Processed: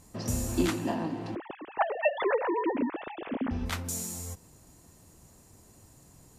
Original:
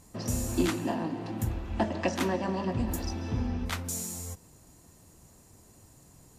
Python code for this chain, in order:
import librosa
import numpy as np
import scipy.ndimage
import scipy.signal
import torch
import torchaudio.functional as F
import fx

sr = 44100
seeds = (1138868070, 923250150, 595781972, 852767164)

y = fx.sine_speech(x, sr, at=(1.35, 3.51))